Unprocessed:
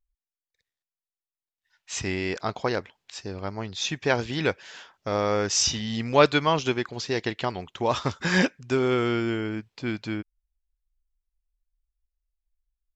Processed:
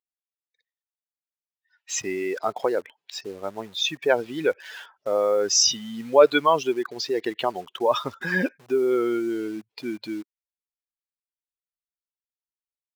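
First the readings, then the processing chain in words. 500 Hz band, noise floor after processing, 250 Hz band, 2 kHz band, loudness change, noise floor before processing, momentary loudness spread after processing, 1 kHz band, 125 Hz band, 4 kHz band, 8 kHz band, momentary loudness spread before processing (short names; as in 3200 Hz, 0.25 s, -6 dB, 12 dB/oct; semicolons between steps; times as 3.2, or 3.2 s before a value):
+4.0 dB, under -85 dBFS, -1.0 dB, -1.0 dB, +2.0 dB, under -85 dBFS, 16 LU, +1.5 dB, -11.0 dB, +2.0 dB, +4.0 dB, 12 LU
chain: spectral contrast raised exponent 1.9; in parallel at -9.5 dB: bit-crush 7-bit; on the sum: HPF 360 Hz 12 dB/oct; gain +2 dB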